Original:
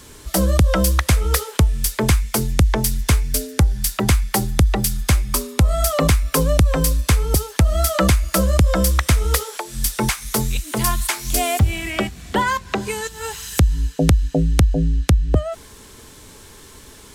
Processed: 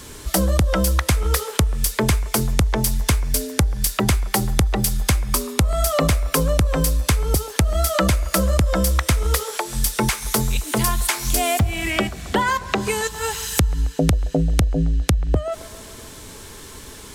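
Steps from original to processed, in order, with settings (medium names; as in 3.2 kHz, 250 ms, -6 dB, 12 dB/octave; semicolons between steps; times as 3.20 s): compression 3:1, threshold -21 dBFS, peak gain reduction 9 dB; on a send: feedback echo behind a band-pass 135 ms, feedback 64%, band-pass 790 Hz, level -16.5 dB; on the sum: trim +4 dB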